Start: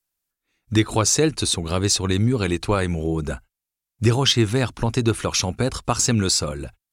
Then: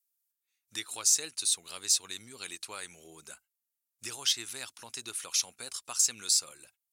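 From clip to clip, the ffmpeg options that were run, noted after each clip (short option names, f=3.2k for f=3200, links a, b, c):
-af "aderivative,volume=-3.5dB"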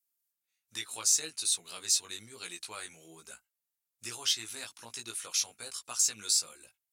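-af "flanger=delay=17:depth=2.2:speed=1.2,volume=2dB"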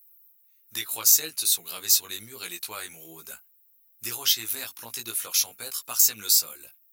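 -af "aexciter=amount=9.5:drive=7.8:freq=12k,volume=5.5dB"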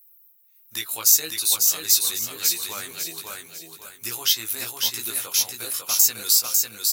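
-af "aecho=1:1:549|1098|1647|2196:0.668|0.227|0.0773|0.0263,volume=2dB"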